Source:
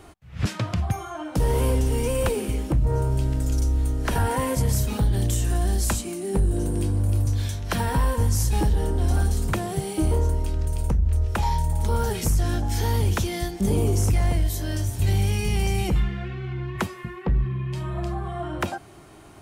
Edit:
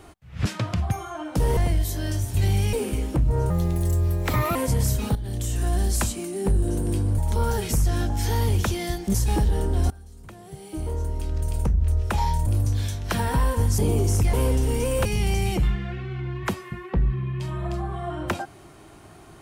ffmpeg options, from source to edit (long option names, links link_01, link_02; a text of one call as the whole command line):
ffmpeg -i in.wav -filter_complex "[0:a]asplit=13[link_01][link_02][link_03][link_04][link_05][link_06][link_07][link_08][link_09][link_10][link_11][link_12][link_13];[link_01]atrim=end=1.572[link_14];[link_02]atrim=start=14.218:end=15.382[link_15];[link_03]atrim=start=2.288:end=3.064[link_16];[link_04]atrim=start=3.06:end=4.44,asetpts=PTS-STARTPTS,asetrate=57771,aresample=44100,atrim=end_sample=46456,asetpts=PTS-STARTPTS[link_17];[link_05]atrim=start=4.436:end=5.04,asetpts=PTS-STARTPTS,afade=type=out:start_time=0.6:duration=0.004:curve=hsin:silence=0.237137[link_18];[link_06]atrim=start=5.04:end=7.072,asetpts=PTS-STARTPTS,afade=type=in:duration=0.57:silence=0.237137[link_19];[link_07]atrim=start=11.708:end=13.672[link_20];[link_08]atrim=start=8.388:end=9.15,asetpts=PTS-STARTPTS,afade=type=out:start_time=0.758:duration=0.004:curve=hsin:silence=0.0668344[link_21];[link_09]atrim=start=9.15:end=11.712,asetpts=PTS-STARTPTS,afade=type=in:duration=1.57:curve=qua:silence=0.0668344[link_22];[link_10]atrim=start=7.068:end=8.392[link_23];[link_11]atrim=start=13.668:end=14.222[link_24];[link_12]atrim=start=1.568:end=2.292[link_25];[link_13]atrim=start=15.378[link_26];[link_14][link_15]acrossfade=duration=0.004:curve1=hsin:curve2=hsin[link_27];[link_27][link_16]acrossfade=duration=0.004:curve1=hsin:curve2=hsin[link_28];[link_28][link_17]acrossfade=duration=0.004:curve1=hsin:curve2=hsin[link_29];[link_18][link_19]concat=n=2:v=0:a=1[link_30];[link_29][link_30]acrossfade=duration=0.004:curve1=hsin:curve2=hsin[link_31];[link_31][link_20]acrossfade=duration=0.004:curve1=hsin:curve2=hsin[link_32];[link_21][link_22]concat=n=2:v=0:a=1[link_33];[link_32][link_33]acrossfade=duration=0.004:curve1=hsin:curve2=hsin[link_34];[link_34][link_23]acrossfade=duration=0.004:curve1=hsin:curve2=hsin[link_35];[link_35][link_24]acrossfade=duration=0.004:curve1=hsin:curve2=hsin[link_36];[link_36][link_25]acrossfade=duration=0.004:curve1=hsin:curve2=hsin[link_37];[link_37][link_26]acrossfade=duration=0.004:curve1=hsin:curve2=hsin" out.wav